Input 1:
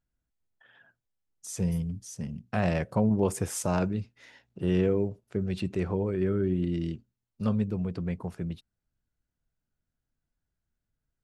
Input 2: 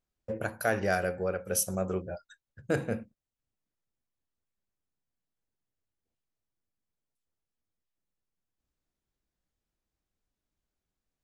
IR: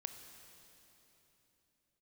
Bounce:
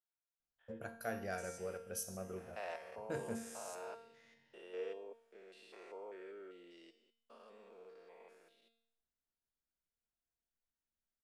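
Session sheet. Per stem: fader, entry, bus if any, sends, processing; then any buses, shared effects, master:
+1.5 dB, 0.00 s, no send, spectrum averaged block by block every 200 ms; high-pass filter 500 Hz 24 dB per octave
−3.5 dB, 0.40 s, send −8.5 dB, no processing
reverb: on, RT60 3.4 s, pre-delay 21 ms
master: tuned comb filter 230 Hz, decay 0.69 s, harmonics all, mix 80%

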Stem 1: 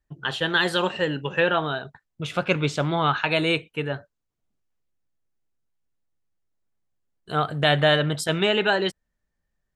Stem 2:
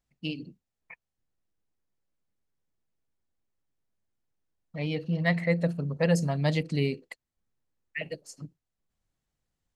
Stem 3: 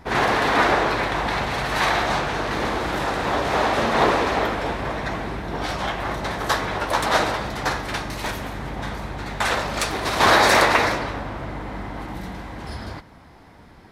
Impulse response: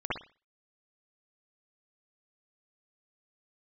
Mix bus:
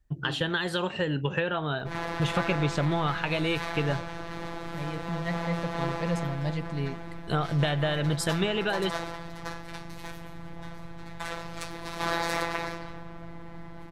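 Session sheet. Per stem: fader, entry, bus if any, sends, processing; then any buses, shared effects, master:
+1.5 dB, 0.00 s, no send, downward compressor 6 to 1, threshold −28 dBFS, peak gain reduction 13 dB
−9.0 dB, 0.00 s, no send, no processing
−12.5 dB, 1.80 s, no send, phases set to zero 168 Hz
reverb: not used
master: low-shelf EQ 160 Hz +10.5 dB

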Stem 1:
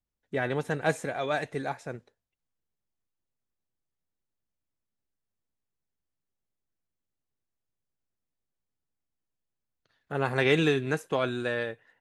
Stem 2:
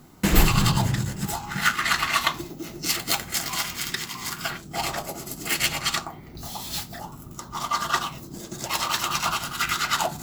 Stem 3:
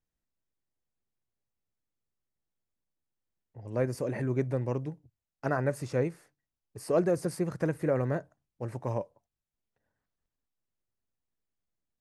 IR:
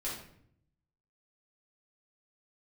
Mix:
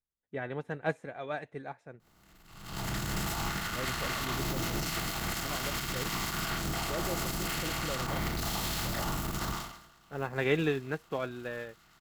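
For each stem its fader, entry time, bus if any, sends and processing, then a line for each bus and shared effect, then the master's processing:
−3.5 dB, 0.00 s, no bus, no send, bass and treble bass +1 dB, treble −11 dB
−6.5 dB, 2.00 s, bus A, no send, compressor on every frequency bin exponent 0.4; compressor whose output falls as the input rises −21 dBFS, ratio −1; automatic ducking −24 dB, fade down 0.45 s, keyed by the first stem
−4.5 dB, 0.00 s, bus A, no send, no processing
bus A: 0.0 dB, transient designer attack −9 dB, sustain +8 dB; brickwall limiter −20.5 dBFS, peak gain reduction 11 dB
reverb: not used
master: expander for the loud parts 1.5 to 1, over −43 dBFS

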